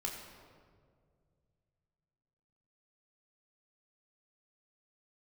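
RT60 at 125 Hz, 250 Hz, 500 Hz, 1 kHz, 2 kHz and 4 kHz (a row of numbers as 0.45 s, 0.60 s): 3.5 s, 2.6 s, 2.4 s, 1.7 s, 1.3 s, 1.1 s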